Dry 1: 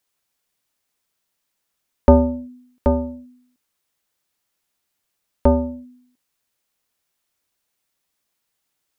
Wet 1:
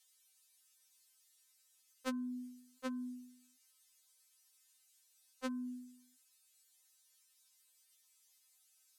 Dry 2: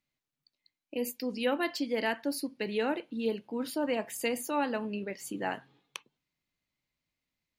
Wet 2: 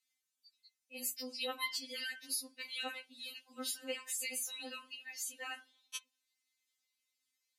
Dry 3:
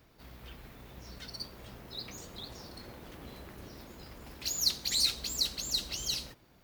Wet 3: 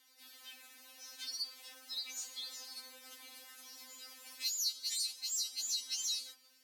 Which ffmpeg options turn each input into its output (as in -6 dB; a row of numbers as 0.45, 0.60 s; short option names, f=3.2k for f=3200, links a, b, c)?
-af "lowpass=10k,aderivative,acompressor=threshold=-45dB:ratio=4,afftfilt=real='re*3.46*eq(mod(b,12),0)':imag='im*3.46*eq(mod(b,12),0)':win_size=2048:overlap=0.75,volume=11.5dB"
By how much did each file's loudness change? -24.5, -7.0, -4.5 LU